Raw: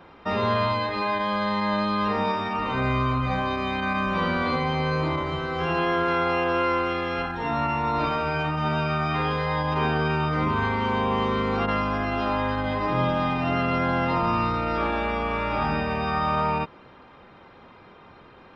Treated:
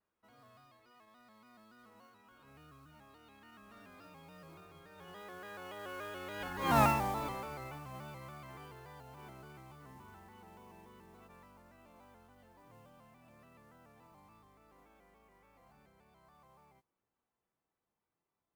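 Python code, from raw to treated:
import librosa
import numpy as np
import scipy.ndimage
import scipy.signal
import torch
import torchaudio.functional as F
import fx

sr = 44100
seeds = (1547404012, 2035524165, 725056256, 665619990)

y = fx.doppler_pass(x, sr, speed_mps=37, closest_m=3.0, pass_at_s=6.8)
y = fx.mod_noise(y, sr, seeds[0], snr_db=17)
y = fx.vibrato_shape(y, sr, shape='square', rate_hz=3.5, depth_cents=100.0)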